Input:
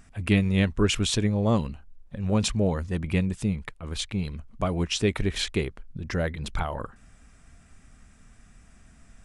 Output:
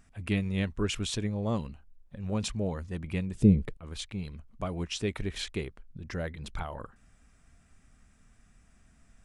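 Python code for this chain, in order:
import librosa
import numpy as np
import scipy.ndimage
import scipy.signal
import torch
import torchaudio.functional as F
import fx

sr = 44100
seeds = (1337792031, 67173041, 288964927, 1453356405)

y = fx.low_shelf_res(x, sr, hz=650.0, db=13.0, q=1.5, at=(3.35, 3.77))
y = F.gain(torch.from_numpy(y), -7.5).numpy()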